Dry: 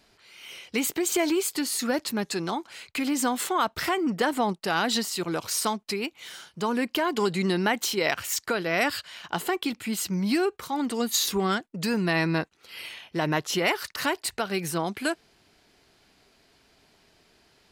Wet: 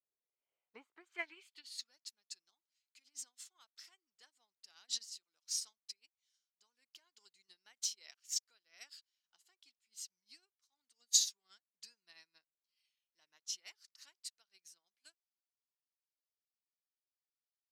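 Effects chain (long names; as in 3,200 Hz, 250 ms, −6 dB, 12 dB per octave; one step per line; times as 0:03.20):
band-pass filter sweep 480 Hz → 5,800 Hz, 0:00.33–0:01.96
expander for the loud parts 2.5 to 1, over −52 dBFS
level +2.5 dB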